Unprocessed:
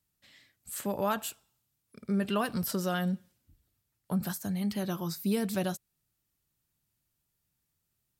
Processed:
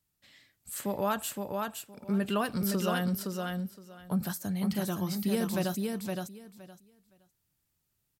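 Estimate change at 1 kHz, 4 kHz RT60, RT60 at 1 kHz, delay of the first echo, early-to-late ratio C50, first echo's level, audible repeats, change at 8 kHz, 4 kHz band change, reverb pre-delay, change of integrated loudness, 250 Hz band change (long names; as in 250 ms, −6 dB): +1.5 dB, no reverb audible, no reverb audible, 516 ms, no reverb audible, −4.0 dB, 3, +1.5 dB, +1.5 dB, no reverb audible, 0.0 dB, +1.5 dB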